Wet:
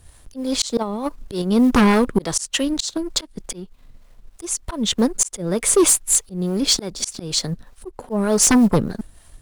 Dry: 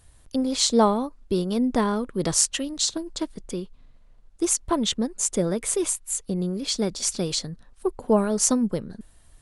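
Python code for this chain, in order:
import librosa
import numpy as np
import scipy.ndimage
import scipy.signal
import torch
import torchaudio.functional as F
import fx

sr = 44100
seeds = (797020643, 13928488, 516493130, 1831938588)

y = fx.law_mismatch(x, sr, coded='A')
y = fx.auto_swell(y, sr, attack_ms=440.0)
y = fx.over_compress(y, sr, threshold_db=-36.0, ratio=-0.5, at=(0.81, 1.42))
y = fx.harmonic_tremolo(y, sr, hz=3.3, depth_pct=50, crossover_hz=420.0)
y = fx.fold_sine(y, sr, drive_db=13, ceiling_db=-9.5)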